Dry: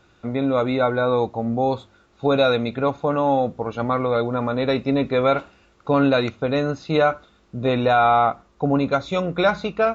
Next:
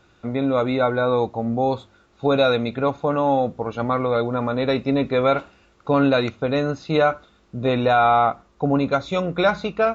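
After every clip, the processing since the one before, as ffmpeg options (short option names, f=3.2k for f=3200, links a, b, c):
-af anull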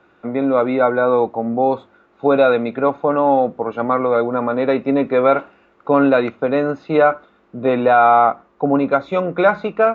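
-filter_complex "[0:a]acrossover=split=190 2500:gain=0.158 1 0.112[a][b][c];[a][b][c]amix=inputs=3:normalize=0,volume=5dB"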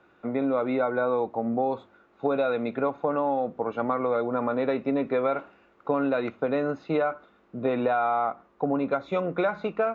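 -af "acompressor=threshold=-16dB:ratio=6,volume=-5.5dB"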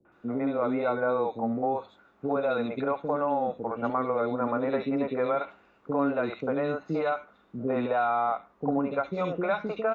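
-filter_complex "[0:a]acrossover=split=410|2500[a][b][c];[b]adelay=50[d];[c]adelay=120[e];[a][d][e]amix=inputs=3:normalize=0"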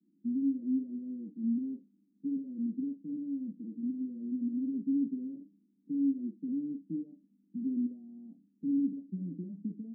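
-af "asuperpass=centerf=230:order=8:qfactor=1.8"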